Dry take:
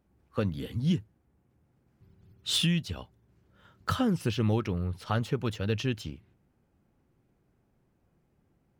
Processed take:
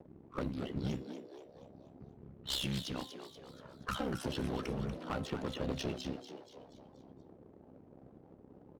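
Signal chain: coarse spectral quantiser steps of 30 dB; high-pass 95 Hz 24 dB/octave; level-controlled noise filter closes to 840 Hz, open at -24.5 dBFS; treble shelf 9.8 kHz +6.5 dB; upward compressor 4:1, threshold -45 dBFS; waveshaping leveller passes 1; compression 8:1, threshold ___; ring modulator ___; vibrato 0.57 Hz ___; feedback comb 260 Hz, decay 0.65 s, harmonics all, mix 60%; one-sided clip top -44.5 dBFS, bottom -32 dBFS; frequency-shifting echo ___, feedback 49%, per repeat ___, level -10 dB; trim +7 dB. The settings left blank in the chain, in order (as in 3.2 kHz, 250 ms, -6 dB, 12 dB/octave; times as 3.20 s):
-28 dBFS, 33 Hz, 16 cents, 239 ms, +110 Hz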